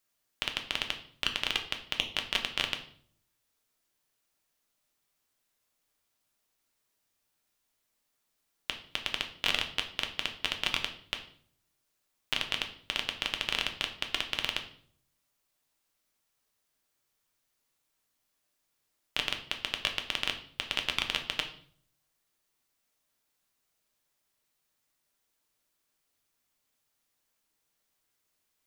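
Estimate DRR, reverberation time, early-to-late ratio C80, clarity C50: 4.0 dB, 0.55 s, 14.5 dB, 11.0 dB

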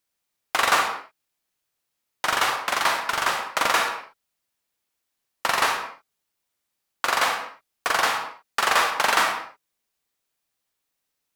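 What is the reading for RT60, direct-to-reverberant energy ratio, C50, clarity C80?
no single decay rate, 3.5 dB, 5.5 dB, 8.5 dB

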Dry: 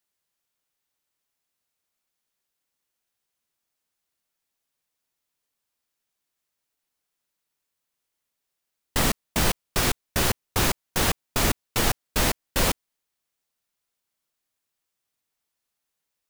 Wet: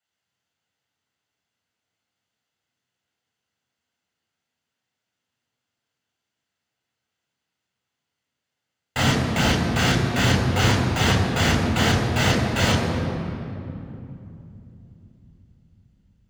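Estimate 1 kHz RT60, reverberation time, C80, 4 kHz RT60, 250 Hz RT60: 2.7 s, 2.9 s, 3.5 dB, 1.7 s, 4.6 s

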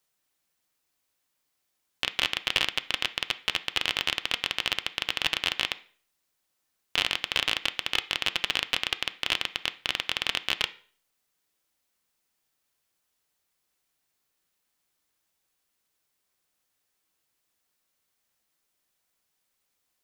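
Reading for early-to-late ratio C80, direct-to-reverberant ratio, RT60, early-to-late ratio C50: 22.0 dB, 10.5 dB, 0.45 s, 17.5 dB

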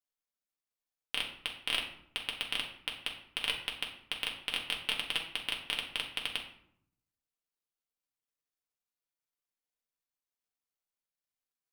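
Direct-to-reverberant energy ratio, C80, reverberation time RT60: -1.0 dB, 11.0 dB, 0.70 s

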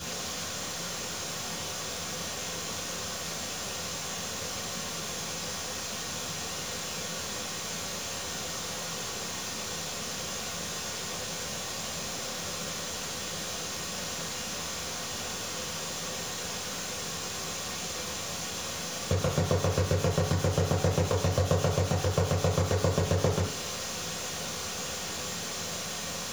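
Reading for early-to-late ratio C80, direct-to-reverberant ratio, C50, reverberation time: 10.0 dB, -5.5 dB, 6.0 dB, 0.55 s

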